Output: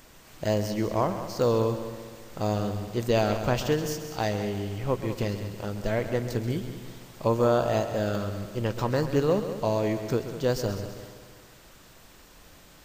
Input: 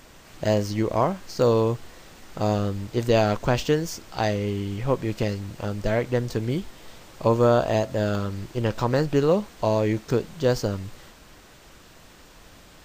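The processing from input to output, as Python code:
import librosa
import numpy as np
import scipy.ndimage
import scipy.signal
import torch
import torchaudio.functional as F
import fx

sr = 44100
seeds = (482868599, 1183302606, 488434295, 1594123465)

y = fx.high_shelf(x, sr, hz=11000.0, db=8.5)
y = fx.echo_heads(y, sr, ms=66, heads='second and third', feedback_pct=53, wet_db=-12.0)
y = y * 10.0 ** (-4.0 / 20.0)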